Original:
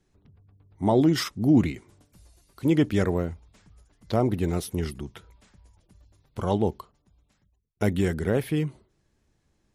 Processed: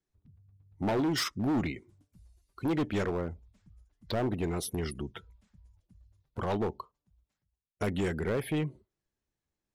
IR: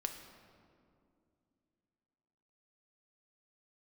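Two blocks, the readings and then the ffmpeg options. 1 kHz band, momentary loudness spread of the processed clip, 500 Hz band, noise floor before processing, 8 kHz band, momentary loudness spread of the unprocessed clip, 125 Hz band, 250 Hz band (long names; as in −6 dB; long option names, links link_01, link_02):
−4.5 dB, 13 LU, −6.0 dB, −71 dBFS, −2.0 dB, 13 LU, −8.0 dB, −8.0 dB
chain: -filter_complex "[0:a]afftdn=noise_reduction=19:noise_floor=-46,lowshelf=frequency=310:gain=-6,asplit=2[link_01][link_02];[link_02]acompressor=threshold=-34dB:ratio=6,volume=3dB[link_03];[link_01][link_03]amix=inputs=2:normalize=0,asoftclip=type=hard:threshold=-21.5dB,volume=-4dB"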